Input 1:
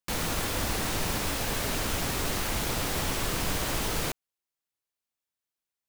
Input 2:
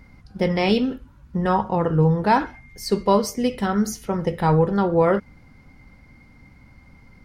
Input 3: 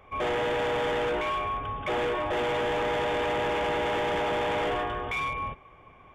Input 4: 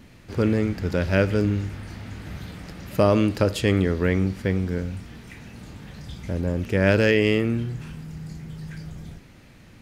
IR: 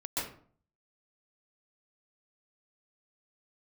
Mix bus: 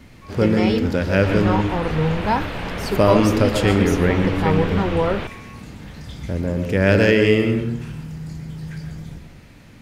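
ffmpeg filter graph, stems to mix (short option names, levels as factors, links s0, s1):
-filter_complex "[0:a]lowpass=f=3100:w=0.5412,lowpass=f=3100:w=1.3066,adelay=1150,volume=1.33,asplit=2[s0][s1];[s1]volume=0.106[s2];[1:a]volume=0.708[s3];[2:a]adelay=100,volume=0.211[s4];[3:a]volume=1.12,asplit=2[s5][s6];[s6]volume=0.376[s7];[4:a]atrim=start_sample=2205[s8];[s2][s7]amix=inputs=2:normalize=0[s9];[s9][s8]afir=irnorm=-1:irlink=0[s10];[s0][s3][s4][s5][s10]amix=inputs=5:normalize=0"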